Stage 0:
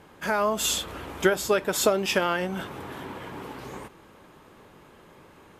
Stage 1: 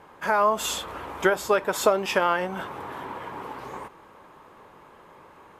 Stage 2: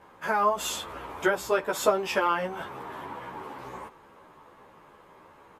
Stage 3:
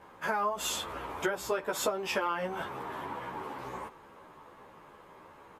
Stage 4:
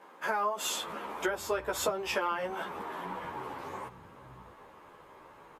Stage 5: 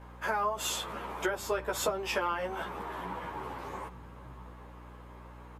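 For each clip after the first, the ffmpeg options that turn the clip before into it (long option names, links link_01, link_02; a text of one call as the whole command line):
ffmpeg -i in.wav -af "equalizer=frequency=500:width_type=o:width=1:gain=4,equalizer=frequency=1000:width_type=o:width=1:gain=10,equalizer=frequency=2000:width_type=o:width=1:gain=3,volume=-4.5dB" out.wav
ffmpeg -i in.wav -filter_complex "[0:a]asplit=2[link_01][link_02];[link_02]adelay=11.9,afreqshift=-2.2[link_03];[link_01][link_03]amix=inputs=2:normalize=1" out.wav
ffmpeg -i in.wav -af "acompressor=threshold=-28dB:ratio=4" out.wav
ffmpeg -i in.wav -filter_complex "[0:a]acrossover=split=190[link_01][link_02];[link_01]adelay=640[link_03];[link_03][link_02]amix=inputs=2:normalize=0" out.wav
ffmpeg -i in.wav -af "aeval=exprs='val(0)+0.00355*(sin(2*PI*60*n/s)+sin(2*PI*2*60*n/s)/2+sin(2*PI*3*60*n/s)/3+sin(2*PI*4*60*n/s)/4+sin(2*PI*5*60*n/s)/5)':channel_layout=same" out.wav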